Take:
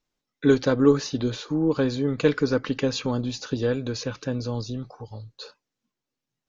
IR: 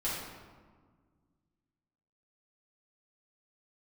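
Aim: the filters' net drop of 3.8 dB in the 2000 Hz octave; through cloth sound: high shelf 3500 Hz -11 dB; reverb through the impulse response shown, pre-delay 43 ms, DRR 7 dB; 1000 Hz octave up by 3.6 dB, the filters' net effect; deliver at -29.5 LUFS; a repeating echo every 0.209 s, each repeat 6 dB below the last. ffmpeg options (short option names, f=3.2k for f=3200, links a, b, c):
-filter_complex "[0:a]equalizer=f=1k:t=o:g=7.5,equalizer=f=2k:t=o:g=-7,aecho=1:1:209|418|627|836|1045|1254:0.501|0.251|0.125|0.0626|0.0313|0.0157,asplit=2[a][b];[1:a]atrim=start_sample=2205,adelay=43[c];[b][c]afir=irnorm=-1:irlink=0,volume=-13dB[d];[a][d]amix=inputs=2:normalize=0,highshelf=f=3.5k:g=-11,volume=-7dB"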